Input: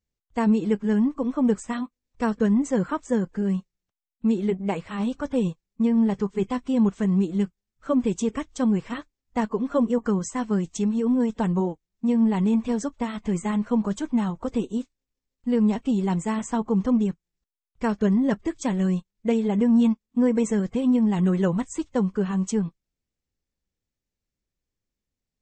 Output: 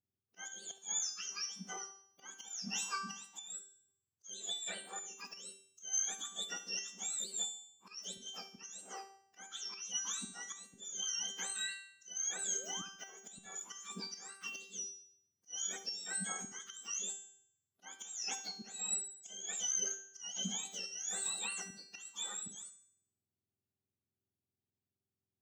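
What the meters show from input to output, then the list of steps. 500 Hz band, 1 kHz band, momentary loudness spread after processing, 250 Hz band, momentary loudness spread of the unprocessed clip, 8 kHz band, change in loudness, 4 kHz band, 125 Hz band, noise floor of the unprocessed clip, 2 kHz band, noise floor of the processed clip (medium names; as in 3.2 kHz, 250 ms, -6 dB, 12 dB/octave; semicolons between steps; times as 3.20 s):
-30.5 dB, -17.5 dB, 13 LU, -35.5 dB, 8 LU, +6.5 dB, -15.5 dB, +4.0 dB, -31.0 dB, under -85 dBFS, -8.0 dB, under -85 dBFS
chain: spectrum inverted on a logarithmic axis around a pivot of 1.2 kHz; slow attack 266 ms; painted sound rise, 12.54–12.87 s, 380–1600 Hz -42 dBFS; feedback comb 390 Hz, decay 0.67 s, mix 90%; on a send: filtered feedback delay 71 ms, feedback 40%, low-pass 2 kHz, level -13 dB; on the sum: trim +6.5 dB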